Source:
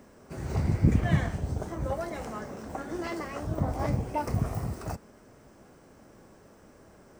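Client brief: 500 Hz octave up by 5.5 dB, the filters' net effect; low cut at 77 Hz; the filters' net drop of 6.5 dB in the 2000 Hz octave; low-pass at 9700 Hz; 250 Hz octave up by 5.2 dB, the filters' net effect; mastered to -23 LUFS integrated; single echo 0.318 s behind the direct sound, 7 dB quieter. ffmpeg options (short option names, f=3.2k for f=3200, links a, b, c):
-af "highpass=77,lowpass=9.7k,equalizer=f=250:t=o:g=6,equalizer=f=500:t=o:g=6,equalizer=f=2k:t=o:g=-8.5,aecho=1:1:318:0.447,volume=5dB"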